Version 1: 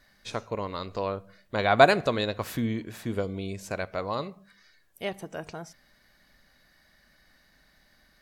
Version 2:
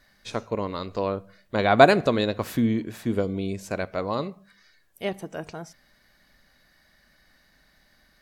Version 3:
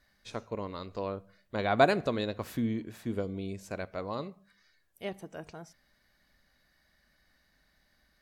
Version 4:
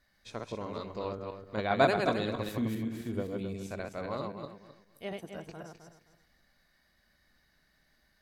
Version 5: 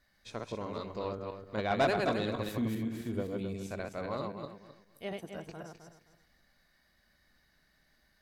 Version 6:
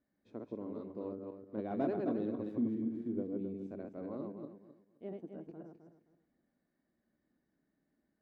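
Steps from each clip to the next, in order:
dynamic EQ 260 Hz, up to +6 dB, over -40 dBFS, Q 0.72; gain +1 dB
bell 65 Hz +5 dB 0.77 oct; gain -8.5 dB
regenerating reverse delay 0.131 s, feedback 48%, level -2.5 dB; gain -2.5 dB
soft clip -20.5 dBFS, distortion -14 dB
band-pass 290 Hz, Q 2.4; gain +3 dB

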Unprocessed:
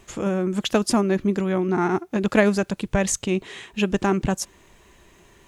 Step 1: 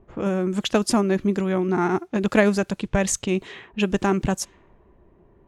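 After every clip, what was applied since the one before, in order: low-pass opened by the level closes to 630 Hz, open at -20.5 dBFS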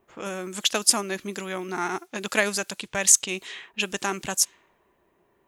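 tilt +4.5 dB/oct; gain -3.5 dB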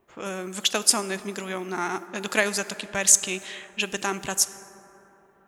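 plate-style reverb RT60 3.8 s, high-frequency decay 0.3×, DRR 13.5 dB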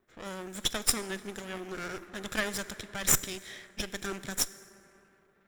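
minimum comb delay 0.54 ms; gain -6 dB

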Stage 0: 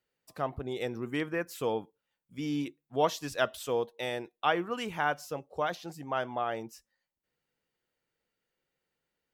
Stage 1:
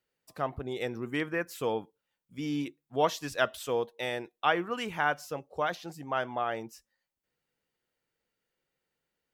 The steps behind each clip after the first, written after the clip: dynamic EQ 1800 Hz, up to +3 dB, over -45 dBFS, Q 1.1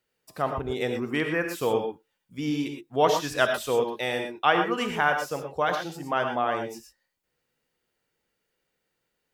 non-linear reverb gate 0.14 s rising, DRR 4.5 dB; gain +4.5 dB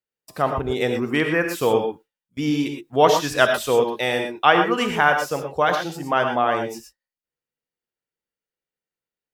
gate with hold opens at -39 dBFS; gain +6 dB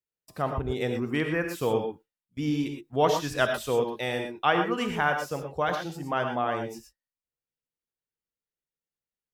low shelf 180 Hz +9.5 dB; gain -8.5 dB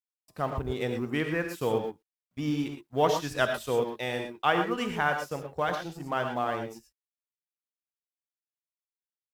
G.711 law mismatch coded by A; gain -1 dB

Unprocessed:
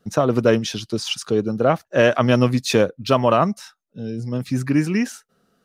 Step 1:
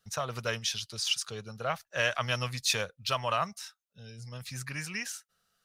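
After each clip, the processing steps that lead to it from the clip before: passive tone stack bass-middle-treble 10-0-10; gain -1.5 dB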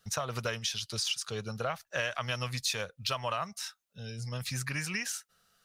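compressor 4:1, threshold -37 dBFS, peak gain reduction 12.5 dB; gain +6 dB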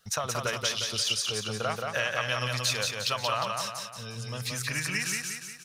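low shelf 370 Hz -4.5 dB; on a send: feedback echo 0.178 s, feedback 48%, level -3.5 dB; on the sum: gain +3.5 dB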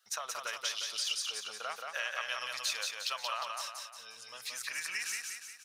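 HPF 840 Hz 12 dB/oct; gain -6 dB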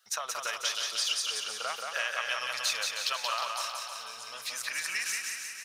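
feedback echo 0.315 s, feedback 53%, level -9 dB; gain +4 dB

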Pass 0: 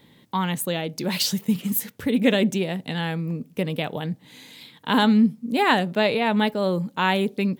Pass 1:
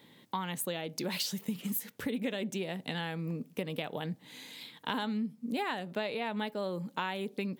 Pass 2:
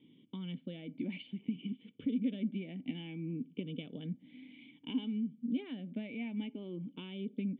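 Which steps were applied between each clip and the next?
HPF 220 Hz 6 dB/oct; compressor 6:1, threshold -29 dBFS, peak gain reduction 14.5 dB; gain -2.5 dB
moving spectral ripple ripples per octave 0.67, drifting +0.59 Hz, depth 7 dB; vocal tract filter i; gain +5.5 dB

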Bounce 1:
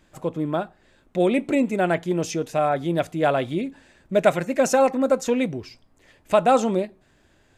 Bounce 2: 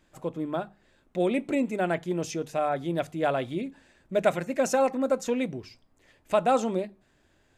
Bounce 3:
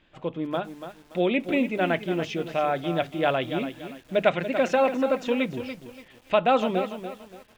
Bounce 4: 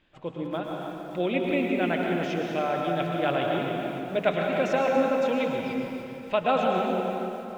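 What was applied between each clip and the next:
notches 50/100/150/200 Hz; gain -5.5 dB
synth low-pass 3100 Hz, resonance Q 2.5; lo-fi delay 0.287 s, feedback 35%, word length 8-bit, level -10 dB; gain +1.5 dB
plate-style reverb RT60 3.1 s, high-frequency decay 0.6×, pre-delay 95 ms, DRR 0 dB; gain -4 dB

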